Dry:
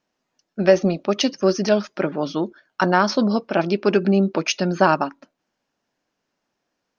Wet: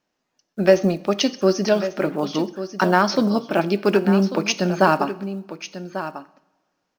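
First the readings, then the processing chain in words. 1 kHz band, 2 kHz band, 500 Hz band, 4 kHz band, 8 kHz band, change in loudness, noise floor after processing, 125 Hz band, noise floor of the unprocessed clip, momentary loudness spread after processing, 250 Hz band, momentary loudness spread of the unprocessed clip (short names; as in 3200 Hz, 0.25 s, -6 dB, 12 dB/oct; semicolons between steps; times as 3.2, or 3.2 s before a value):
+0.5 dB, +0.5 dB, +0.5 dB, +0.5 dB, n/a, 0.0 dB, -77 dBFS, +0.5 dB, -78 dBFS, 14 LU, +0.5 dB, 8 LU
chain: block floating point 7-bit; on a send: echo 1.143 s -12 dB; on the sum: two-slope reverb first 0.67 s, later 1.8 s, from -18 dB, DRR 14 dB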